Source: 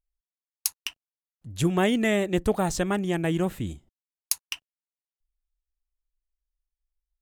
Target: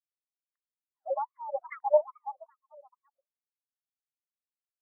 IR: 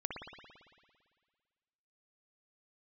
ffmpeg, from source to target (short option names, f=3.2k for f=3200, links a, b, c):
-filter_complex "[0:a]asetrate=66075,aresample=44100,atempo=0.66742,asoftclip=type=tanh:threshold=-10.5dB,atempo=1.5,asubboost=boost=8:cutoff=150,afftfilt=real='re*gte(hypot(re,im),0.0631)':imag='im*gte(hypot(re,im),0.0631)':win_size=1024:overlap=0.75,firequalizer=gain_entry='entry(260,0);entry(600,0);entry(1200,-26);entry(1800,-22);entry(2700,11);entry(4100,6);entry(6600,-12);entry(12000,-15)':delay=0.05:min_phase=1,asplit=2[a][b];[b]aecho=0:1:773:0.075[c];[a][c]amix=inputs=2:normalize=0,acrossover=split=1800[d][e];[d]aeval=exprs='val(0)*(1-0.7/2+0.7/2*cos(2*PI*1*n/s))':c=same[f];[e]aeval=exprs='val(0)*(1-0.7/2-0.7/2*cos(2*PI*1*n/s))':c=same[g];[f][g]amix=inputs=2:normalize=0,alimiter=level_in=20dB:limit=-1dB:release=50:level=0:latency=1,afftfilt=real='re*between(b*sr/1024,780*pow(1600/780,0.5+0.5*sin(2*PI*2.4*pts/sr))/1.41,780*pow(1600/780,0.5+0.5*sin(2*PI*2.4*pts/sr))*1.41)':imag='im*between(b*sr/1024,780*pow(1600/780,0.5+0.5*sin(2*PI*2.4*pts/sr))/1.41,780*pow(1600/780,0.5+0.5*sin(2*PI*2.4*pts/sr))*1.41)':win_size=1024:overlap=0.75,volume=-3.5dB"